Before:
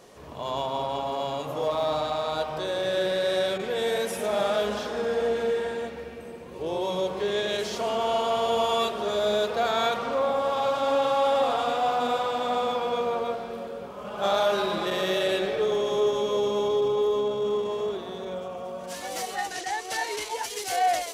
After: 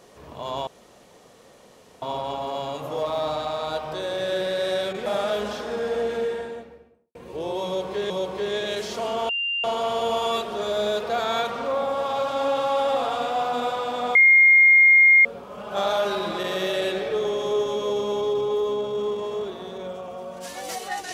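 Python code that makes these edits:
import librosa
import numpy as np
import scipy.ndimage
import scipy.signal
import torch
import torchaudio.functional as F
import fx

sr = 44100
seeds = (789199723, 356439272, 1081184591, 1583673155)

y = fx.studio_fade_out(x, sr, start_s=5.42, length_s=0.99)
y = fx.edit(y, sr, fx.insert_room_tone(at_s=0.67, length_s=1.35),
    fx.cut(start_s=3.71, length_s=0.61),
    fx.repeat(start_s=6.92, length_s=0.44, count=2),
    fx.insert_tone(at_s=8.11, length_s=0.35, hz=2790.0, db=-23.0),
    fx.bleep(start_s=12.62, length_s=1.1, hz=2130.0, db=-10.5), tone=tone)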